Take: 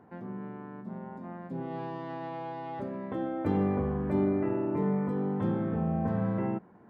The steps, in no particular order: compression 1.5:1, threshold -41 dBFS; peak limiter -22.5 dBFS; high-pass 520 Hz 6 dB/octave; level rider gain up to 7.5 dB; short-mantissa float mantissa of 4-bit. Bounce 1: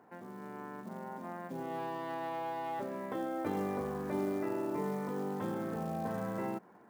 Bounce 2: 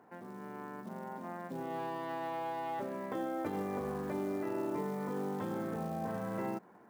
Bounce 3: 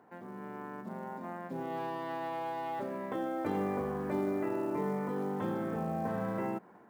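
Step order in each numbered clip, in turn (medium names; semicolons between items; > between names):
level rider > compression > short-mantissa float > high-pass > peak limiter; peak limiter > level rider > short-mantissa float > compression > high-pass; high-pass > short-mantissa float > level rider > compression > peak limiter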